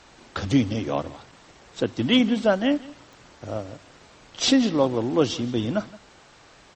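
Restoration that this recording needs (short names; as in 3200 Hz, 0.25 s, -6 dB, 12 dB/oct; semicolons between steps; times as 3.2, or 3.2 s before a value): de-click; inverse comb 0.169 s -20.5 dB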